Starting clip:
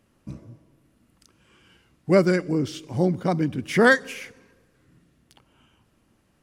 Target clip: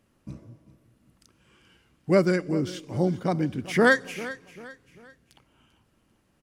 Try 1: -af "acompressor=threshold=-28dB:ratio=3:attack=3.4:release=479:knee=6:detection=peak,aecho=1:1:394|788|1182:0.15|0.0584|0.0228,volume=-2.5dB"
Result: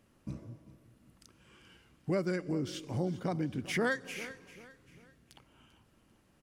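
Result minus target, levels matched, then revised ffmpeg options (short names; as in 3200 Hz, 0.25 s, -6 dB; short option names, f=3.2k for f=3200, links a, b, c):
compressor: peak gain reduction +13.5 dB
-af "aecho=1:1:394|788|1182:0.15|0.0584|0.0228,volume=-2.5dB"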